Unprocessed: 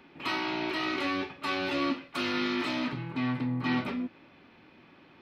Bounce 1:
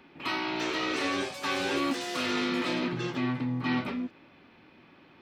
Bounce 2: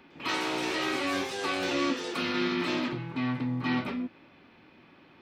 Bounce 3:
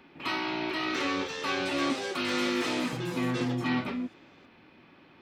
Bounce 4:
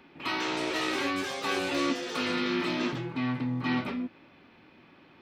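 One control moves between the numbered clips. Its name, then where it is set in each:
ever faster or slower copies, time: 417 ms, 105 ms, 764 ms, 221 ms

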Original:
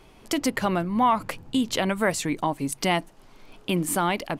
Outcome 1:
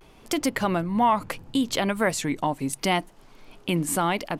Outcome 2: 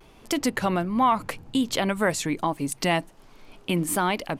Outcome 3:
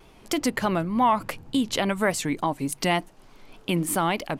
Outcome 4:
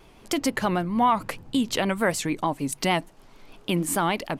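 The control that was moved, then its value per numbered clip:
vibrato, rate: 0.72 Hz, 1.3 Hz, 3.4 Hz, 6.6 Hz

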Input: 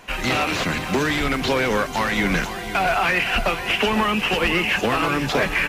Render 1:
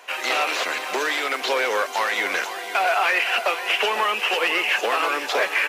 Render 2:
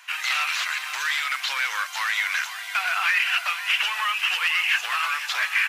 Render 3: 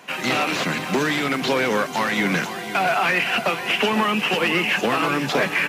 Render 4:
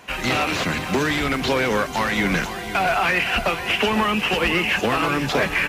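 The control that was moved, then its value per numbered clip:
high-pass, cutoff frequency: 430 Hz, 1.2 kHz, 140 Hz, 40 Hz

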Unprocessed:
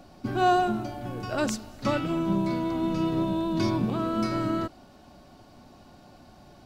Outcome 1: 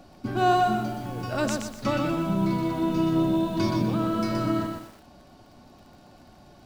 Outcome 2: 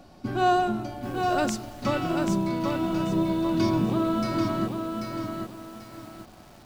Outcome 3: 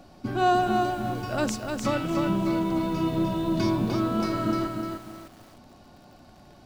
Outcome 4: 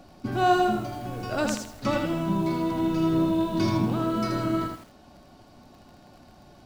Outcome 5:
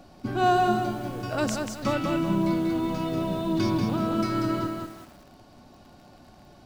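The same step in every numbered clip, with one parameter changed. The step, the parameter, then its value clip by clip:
bit-crushed delay, time: 123 ms, 788 ms, 302 ms, 80 ms, 189 ms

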